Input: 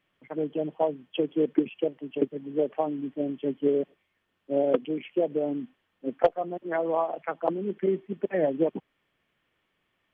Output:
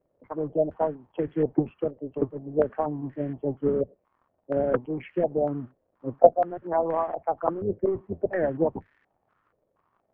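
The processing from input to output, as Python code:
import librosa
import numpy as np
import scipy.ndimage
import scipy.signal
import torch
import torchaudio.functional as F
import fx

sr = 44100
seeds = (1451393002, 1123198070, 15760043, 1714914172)

y = fx.octave_divider(x, sr, octaves=1, level_db=-4.0)
y = fx.dmg_crackle(y, sr, seeds[0], per_s=130.0, level_db=-48.0)
y = fx.filter_held_lowpass(y, sr, hz=4.2, low_hz=550.0, high_hz=1800.0)
y = y * 10.0 ** (-2.0 / 20.0)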